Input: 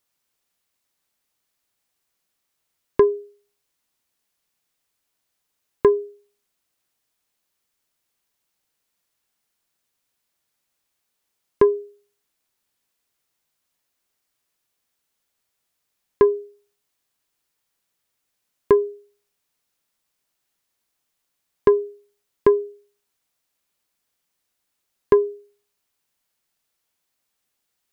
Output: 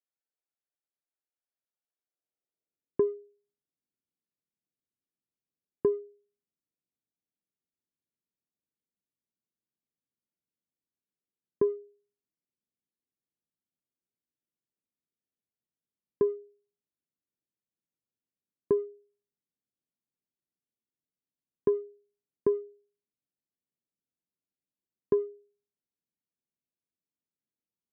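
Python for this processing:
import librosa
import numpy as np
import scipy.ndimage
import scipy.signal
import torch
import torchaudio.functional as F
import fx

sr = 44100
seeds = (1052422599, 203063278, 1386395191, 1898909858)

y = fx.wiener(x, sr, points=41)
y = fx.filter_sweep_bandpass(y, sr, from_hz=1300.0, to_hz=220.0, start_s=1.96, end_s=3.01, q=0.92)
y = y * 10.0 ** (-6.5 / 20.0)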